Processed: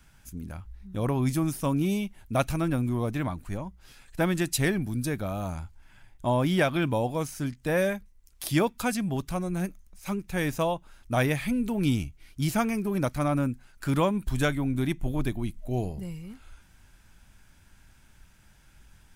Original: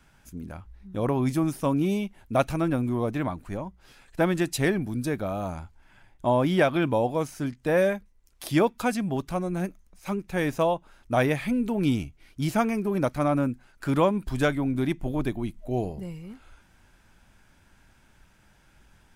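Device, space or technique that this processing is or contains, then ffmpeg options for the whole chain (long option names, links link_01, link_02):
smiley-face EQ: -filter_complex "[0:a]lowshelf=frequency=150:gain=4.5,equalizer=frequency=490:width_type=o:width=2.6:gain=-4.5,highshelf=frequency=6000:gain=6,asettb=1/sr,asplit=3[link_01][link_02][link_03];[link_01]atrim=end=14.064[link_04];[link_02]atrim=start=14.06:end=15.16,asetpts=PTS-STARTPTS,afade=type=in:duration=0.004:curve=qsin,afade=type=out:start_time=1.096:duration=0.004:curve=qsin,bandreject=frequency=4900:width=9.3[link_05];[link_03]atrim=start=15.156[link_06];[link_04][link_05]acrossfade=duration=0.004:curve1=hsin:curve2=qsin[link_07];[link_07][link_06]acrossfade=duration=0.004:curve1=qsin:curve2=hsin"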